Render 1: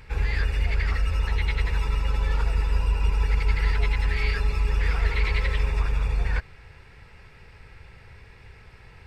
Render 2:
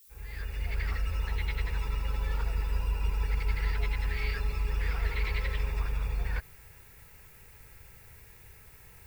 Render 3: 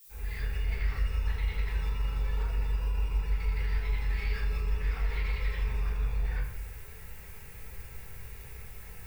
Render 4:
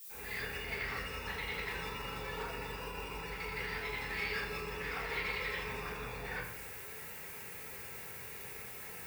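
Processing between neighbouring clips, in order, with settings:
fade in at the beginning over 0.83 s; background noise violet −50 dBFS; level −7 dB
brickwall limiter −29 dBFS, peak gain reduction 11 dB; downward compressor 2 to 1, threshold −38 dBFS, peak gain reduction 4 dB; rectangular room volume 160 cubic metres, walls mixed, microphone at 1.5 metres
high-pass filter 220 Hz 12 dB per octave; level +4.5 dB

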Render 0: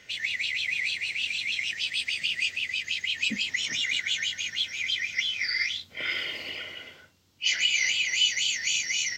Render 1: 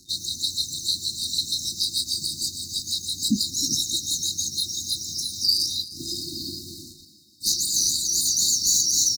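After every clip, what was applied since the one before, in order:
leveller curve on the samples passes 3
echo with shifted repeats 309 ms, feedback 49%, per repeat +57 Hz, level −16 dB
brick-wall band-stop 370–3,700 Hz
level +2.5 dB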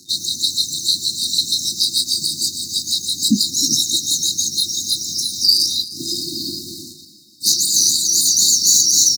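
high-pass filter 140 Hz 12 dB per octave
level +7.5 dB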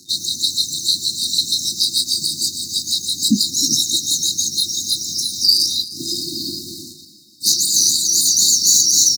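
no processing that can be heard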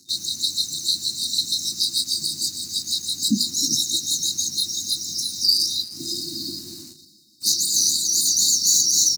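mains-hum notches 60/120/180/240/300/360 Hz
in parallel at −8 dB: centre clipping without the shift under −31.5 dBFS
on the sum: level −7.5 dB

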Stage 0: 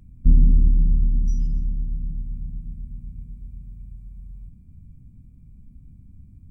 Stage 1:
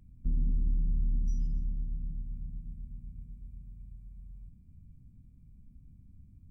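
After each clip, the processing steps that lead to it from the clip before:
brickwall limiter −14 dBFS, peak gain reduction 9 dB
level −8.5 dB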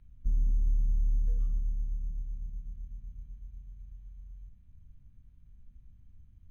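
parametric band 200 Hz −13.5 dB 2.9 octaves
decimation without filtering 7×
bass and treble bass +2 dB, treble −8 dB
level +2.5 dB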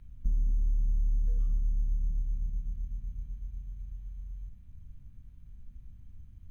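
downward compressor, threshold −30 dBFS, peak gain reduction 7.5 dB
level +6 dB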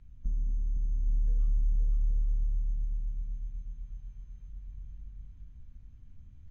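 bouncing-ball delay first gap 510 ms, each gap 0.6×, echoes 5
level −3 dB
AAC 24 kbit/s 32,000 Hz

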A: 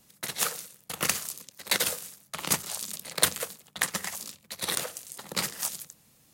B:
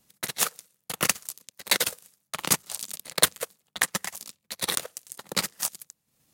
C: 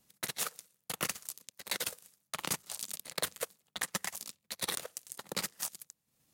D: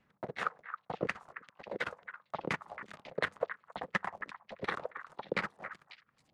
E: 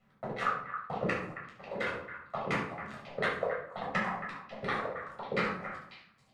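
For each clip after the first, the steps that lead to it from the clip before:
transient designer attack +4 dB, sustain −11 dB; leveller curve on the samples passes 1; level −3.5 dB
brickwall limiter −13.5 dBFS, peak gain reduction 11 dB; speech leveller within 4 dB 0.5 s; level −5 dB
auto-filter low-pass saw down 2.8 Hz 410–2,200 Hz; echo through a band-pass that steps 272 ms, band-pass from 1,400 Hz, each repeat 1.4 octaves, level −7.5 dB; level +2.5 dB
rectangular room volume 900 cubic metres, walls furnished, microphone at 6.6 metres; level −4.5 dB

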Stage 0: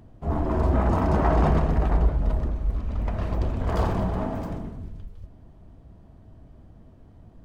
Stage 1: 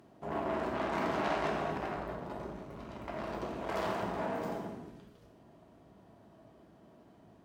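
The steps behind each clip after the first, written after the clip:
tube saturation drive 28 dB, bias 0.35
Bessel high-pass filter 290 Hz, order 2
reverb whose tail is shaped and stops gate 280 ms falling, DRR −0.5 dB
level −1.5 dB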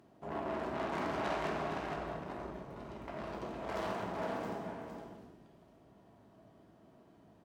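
phase distortion by the signal itself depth 0.086 ms
single-tap delay 462 ms −6.5 dB
level −3.5 dB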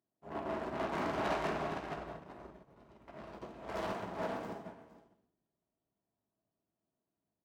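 in parallel at −7 dB: wave folding −32 dBFS
on the sum: expander for the loud parts 2.5 to 1, over −53 dBFS
level +1 dB

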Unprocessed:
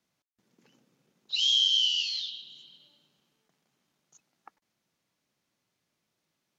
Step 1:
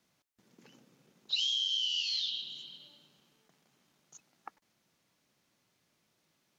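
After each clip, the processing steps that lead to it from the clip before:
downward compressor 12 to 1, threshold −34 dBFS, peak gain reduction 14 dB
level +5 dB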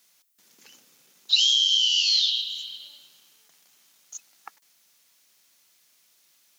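spectral tilt +4.5 dB per octave
level +3.5 dB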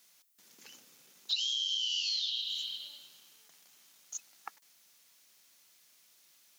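downward compressor 8 to 1, threshold −29 dBFS, peak gain reduction 13.5 dB
level −1.5 dB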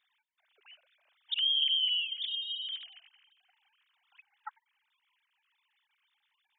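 three sine waves on the formant tracks
level +2.5 dB

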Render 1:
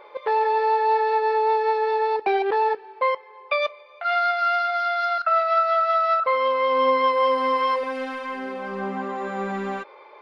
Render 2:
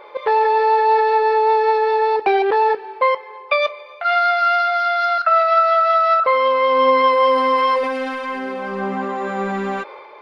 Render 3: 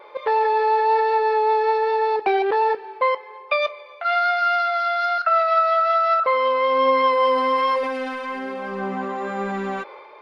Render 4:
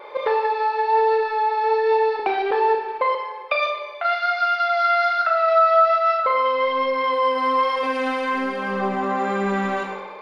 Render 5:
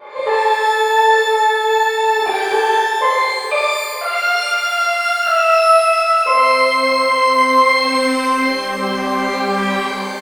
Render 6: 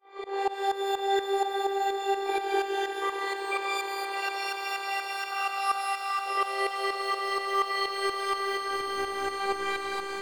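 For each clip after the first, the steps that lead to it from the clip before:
transient designer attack +1 dB, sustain +5 dB; level +5 dB
pitch vibrato 1.2 Hz 14 cents; level −3.5 dB
downward compressor, threshold −23 dBFS, peak gain reduction 9 dB; four-comb reverb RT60 0.79 s, combs from 26 ms, DRR 2 dB; level +4 dB
repeating echo 905 ms, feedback 24%, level −15 dB; reverb with rising layers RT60 1.2 s, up +12 semitones, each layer −8 dB, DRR −10 dB; level −5 dB
shaped tremolo saw up 4.2 Hz, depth 95%; echo that builds up and dies away 87 ms, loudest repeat 8, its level −14 dB; phases set to zero 392 Hz; level −8 dB

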